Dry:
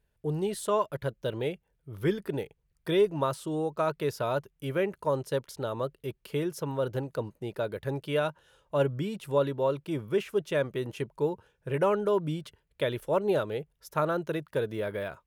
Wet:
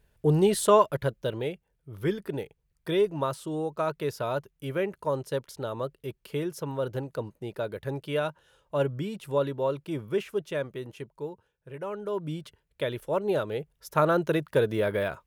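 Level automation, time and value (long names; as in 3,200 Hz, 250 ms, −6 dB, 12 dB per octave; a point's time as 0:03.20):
0:00.67 +8.5 dB
0:01.48 −0.5 dB
0:10.19 −0.5 dB
0:11.79 −11.5 dB
0:12.36 −1 dB
0:13.23 −1 dB
0:14.19 +6 dB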